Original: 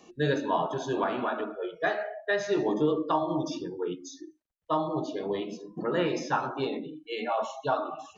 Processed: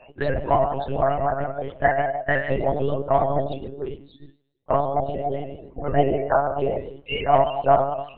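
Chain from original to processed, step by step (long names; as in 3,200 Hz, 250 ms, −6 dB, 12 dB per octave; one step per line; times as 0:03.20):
spectral magnitudes quantised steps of 30 dB
high-pass filter 51 Hz 12 dB per octave
parametric band 2,800 Hz +8.5 dB 0.21 octaves
mains-hum notches 50/100/150/200 Hz
hollow resonant body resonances 670/2,000 Hz, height 18 dB, ringing for 50 ms
in parallel at −11 dB: hard clipping −20 dBFS, distortion −9 dB
on the sum: high-pass filter sweep 110 Hz → 390 Hz, 0:05.67–0:06.27
spectral peaks only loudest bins 64
on a send at −17 dB: convolution reverb RT60 1.1 s, pre-delay 3 ms
on the sum: one-pitch LPC vocoder at 8 kHz 140 Hz
pitch modulation by a square or saw wave saw up 6.8 Hz, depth 100 cents
level −1.5 dB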